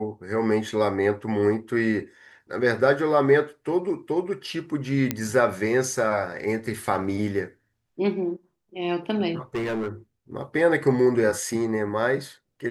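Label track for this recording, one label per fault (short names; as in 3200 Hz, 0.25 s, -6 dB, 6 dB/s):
5.110000	5.110000	pop -8 dBFS
9.550000	9.890000	clipped -24 dBFS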